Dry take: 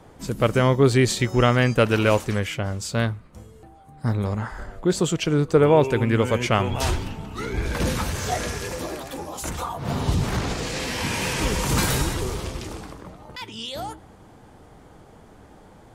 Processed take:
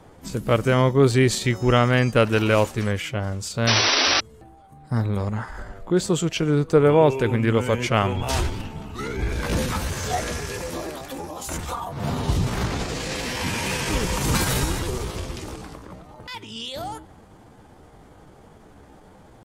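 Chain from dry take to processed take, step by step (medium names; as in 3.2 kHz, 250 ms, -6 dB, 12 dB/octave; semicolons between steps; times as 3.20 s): painted sound noise, 3.01–3.46 s, 240–6000 Hz -19 dBFS; tempo 0.82×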